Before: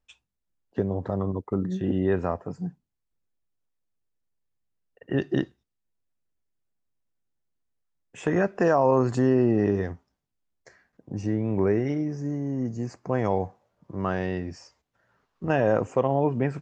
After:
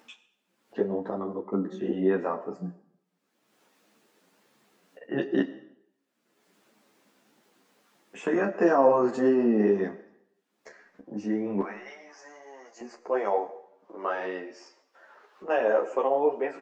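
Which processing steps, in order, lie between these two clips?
high-pass filter 210 Hz 24 dB per octave, from 0:11.61 760 Hz, from 0:12.81 360 Hz
high-shelf EQ 5,000 Hz −10 dB
upward compression, threshold −41 dBFS
double-tracking delay 29 ms −10.5 dB
comb and all-pass reverb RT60 0.74 s, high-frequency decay 0.95×, pre-delay 45 ms, DRR 15.5 dB
string-ensemble chorus
level +3 dB

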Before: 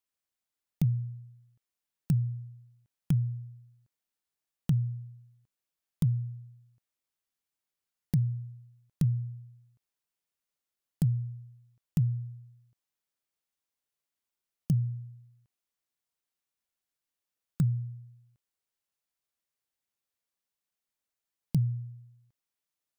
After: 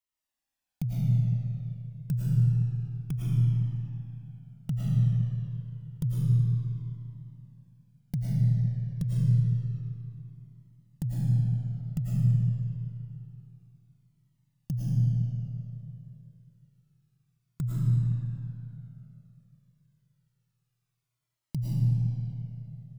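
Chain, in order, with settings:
convolution reverb RT60 3.1 s, pre-delay 70 ms, DRR −7.5 dB
flanger whose copies keep moving one way falling 0.28 Hz

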